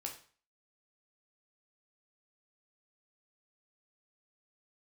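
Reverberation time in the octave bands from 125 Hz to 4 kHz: 0.45 s, 0.40 s, 0.40 s, 0.45 s, 0.45 s, 0.40 s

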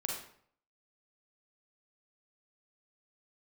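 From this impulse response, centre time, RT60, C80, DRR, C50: 43 ms, 0.60 s, 6.5 dB, -1.5 dB, 2.0 dB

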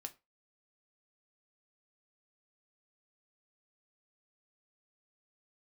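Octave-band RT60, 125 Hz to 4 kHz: 0.25 s, 0.25 s, 0.25 s, 0.25 s, 0.25 s, 0.20 s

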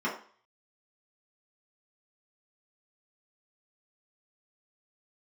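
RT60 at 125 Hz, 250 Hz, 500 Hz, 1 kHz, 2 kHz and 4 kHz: 0.30 s, 0.40 s, 0.45 s, 0.50 s, 0.45 s, 0.45 s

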